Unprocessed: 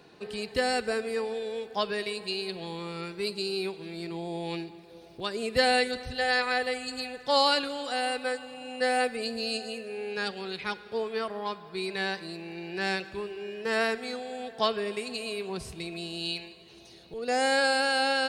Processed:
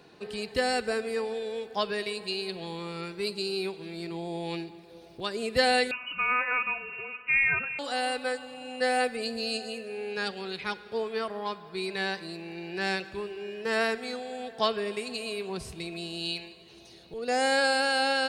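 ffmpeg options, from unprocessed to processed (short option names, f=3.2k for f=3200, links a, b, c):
-filter_complex "[0:a]asettb=1/sr,asplit=3[a][b][c];[a]atrim=end=5.914[d];[b]atrim=start=5.91:end=7.79,asetpts=PTS-STARTPTS,afade=t=in:d=0.004:c=qsin,afade=t=out:st=1.876:d=0.004:c=qsin,lowpass=f=2.6k:t=q:w=0.5098,lowpass=f=2.6k:t=q:w=0.6013,lowpass=f=2.6k:t=q:w=0.9,lowpass=f=2.6k:t=q:w=2.563,afreqshift=-3000[e];[c]atrim=start=7.786[f];[d][e]acrossfade=d=0.004:c1=hsin:c2=qsin[g];[g][f]acrossfade=d=0.004:c1=qsin:c2=hsin"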